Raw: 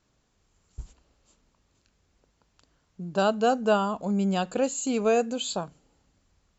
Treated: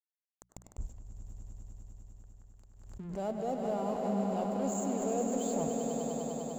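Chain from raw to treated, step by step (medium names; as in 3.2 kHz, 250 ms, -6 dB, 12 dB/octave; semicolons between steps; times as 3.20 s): bass shelf 62 Hz +8.5 dB; reverse; compression 6:1, threshold -36 dBFS, peak gain reduction 17.5 dB; reverse; high-order bell 2.5 kHz -14 dB 2.6 oct; crossover distortion -56.5 dBFS; hum notches 60/120/180 Hz; echo with a slow build-up 100 ms, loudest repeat 5, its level -7 dB; on a send at -18 dB: reverberation RT60 1.0 s, pre-delay 74 ms; on the sum: swell ahead of each attack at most 54 dB/s; trim +3 dB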